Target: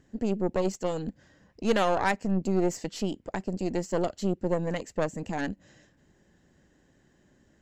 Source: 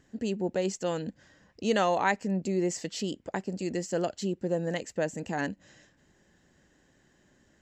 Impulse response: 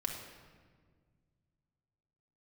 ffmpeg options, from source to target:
-af "tiltshelf=f=700:g=3,aeval=exprs='0.237*(cos(1*acos(clip(val(0)/0.237,-1,1)))-cos(1*PI/2))+0.0299*(cos(6*acos(clip(val(0)/0.237,-1,1)))-cos(6*PI/2))':c=same"

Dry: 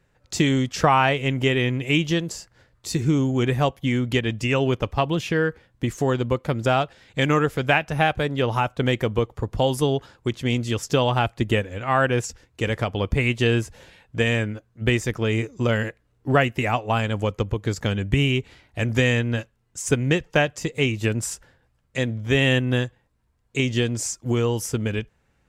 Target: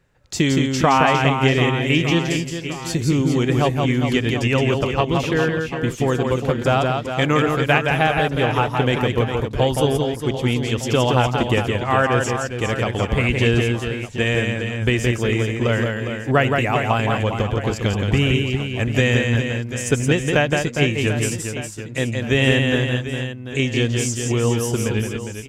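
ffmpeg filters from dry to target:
-af "aecho=1:1:170|408|741.2|1208|1861:0.631|0.398|0.251|0.158|0.1,volume=1.5dB"

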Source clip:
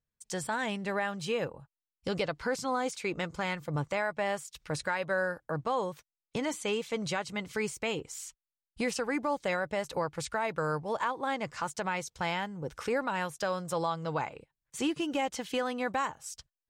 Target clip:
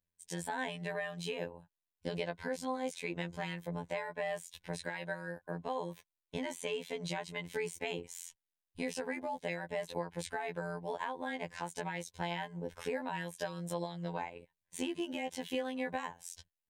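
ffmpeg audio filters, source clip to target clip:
-af "acompressor=threshold=-33dB:ratio=2.5,afftfilt=real='hypot(re,im)*cos(PI*b)':imag='0':win_size=2048:overlap=0.75,superequalizer=10b=0.282:14b=0.562:15b=0.631,volume=1.5dB"

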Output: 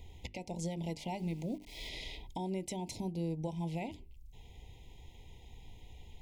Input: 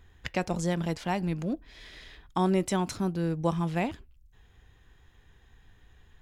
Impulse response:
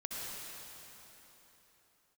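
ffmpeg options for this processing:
-filter_complex "[0:a]acompressor=threshold=-42dB:ratio=3,alimiter=level_in=9dB:limit=-24dB:level=0:latency=1:release=256,volume=-9dB,asettb=1/sr,asplit=3[a][b][c];[a]atrim=end=1.194[d];[b]atrim=start=1.19:end=1.89,asetpts=PTS-STARTPTS,afade=t=in:d=0.004:c=qsin,afade=t=out:st=0.696:d=0.004:c=qsin,aeval=exprs='val(0)*gte(abs(val(0)),0.00141)':c=same[e];[c]atrim=start=1.886[f];[d][e]acrossfade=d=0.004:c1=hsin:c2=qsin[g];[g][f]acrossfade=d=0.004:c1=qsin:c2=hsin,asuperstop=centerf=1400:order=20:qfactor=1.4,bandreject=f=50:t=h:w=6,bandreject=f=100:t=h:w=6,bandreject=f=150:t=h:w=6,bandreject=f=200:t=h:w=6,bandreject=f=250:t=h:w=6,bandreject=f=300:t=h:w=6,bandreject=f=350:t=h:w=6,bandreject=f=400:t=h:w=6,volume=6dB"

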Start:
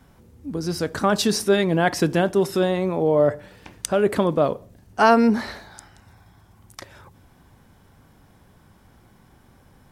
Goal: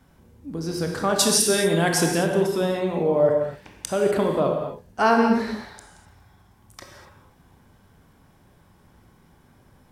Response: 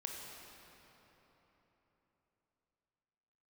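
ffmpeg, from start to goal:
-filter_complex "[0:a]asettb=1/sr,asplit=3[a][b][c];[a]atrim=end=1.194[d];[b]atrim=start=1.19:end=2.18,asetpts=PTS-STARTPTS,afade=t=in:d=0.004:c=qsin,afade=t=out:st=0.986:d=0.004:c=qsin,equalizer=f=9.5k:w=0.61:g=14.5[e];[c]atrim=start=2.176[f];[d][e]acrossfade=d=0.004:c1=hsin:c2=qsin[g];[g][f]acrossfade=d=0.004:c1=qsin:c2=hsin[h];[1:a]atrim=start_sample=2205,afade=t=out:st=0.31:d=0.01,atrim=end_sample=14112[i];[h][i]afir=irnorm=-1:irlink=0"

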